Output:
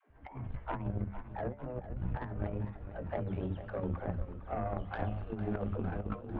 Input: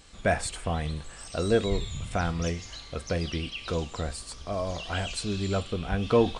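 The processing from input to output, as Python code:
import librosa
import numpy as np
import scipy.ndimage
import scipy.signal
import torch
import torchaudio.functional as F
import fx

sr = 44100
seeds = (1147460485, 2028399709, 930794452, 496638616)

y = fx.pitch_glide(x, sr, semitones=5.5, runs='ending unshifted')
y = fx.low_shelf(y, sr, hz=110.0, db=8.0)
y = fx.hum_notches(y, sr, base_hz=50, count=8)
y = fx.dispersion(y, sr, late='lows', ms=107.0, hz=340.0)
y = fx.over_compress(y, sr, threshold_db=-30.0, ratio=-0.5)
y = scipy.ndimage.gaussian_filter1d(y, 5.1, mode='constant')
y = fx.cheby_harmonics(y, sr, harmonics=(3,), levels_db=(-14,), full_scale_db=-19.0)
y = fx.echo_warbled(y, sr, ms=451, feedback_pct=60, rate_hz=2.8, cents=88, wet_db=-12.5)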